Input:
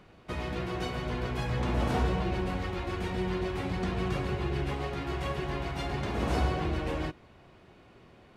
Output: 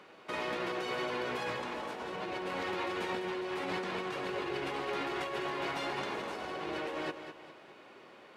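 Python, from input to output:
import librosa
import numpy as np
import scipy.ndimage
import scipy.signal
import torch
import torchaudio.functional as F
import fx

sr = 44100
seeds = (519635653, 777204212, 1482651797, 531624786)

p1 = scipy.signal.sosfilt(scipy.signal.butter(2, 400.0, 'highpass', fs=sr, output='sos'), x)
p2 = fx.high_shelf(p1, sr, hz=5900.0, db=-4.5)
p3 = fx.notch(p2, sr, hz=710.0, q=12.0)
p4 = fx.over_compress(p3, sr, threshold_db=-40.0, ratio=-1.0)
p5 = p4 + fx.echo_feedback(p4, sr, ms=204, feedback_pct=40, wet_db=-9.5, dry=0)
y = p5 * 10.0 ** (2.5 / 20.0)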